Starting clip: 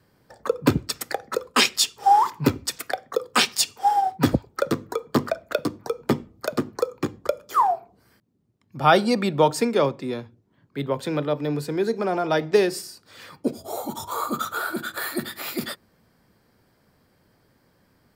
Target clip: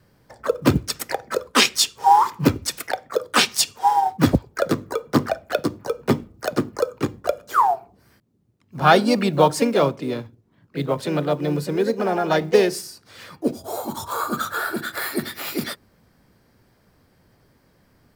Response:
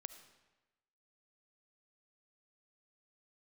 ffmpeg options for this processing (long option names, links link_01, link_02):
-filter_complex "[0:a]asplit=2[link_01][link_02];[link_02]asetrate=52444,aresample=44100,atempo=0.840896,volume=-8dB[link_03];[link_01][link_03]amix=inputs=2:normalize=0,lowshelf=frequency=96:gain=6.5,acrusher=bits=9:mode=log:mix=0:aa=0.000001,volume=1.5dB"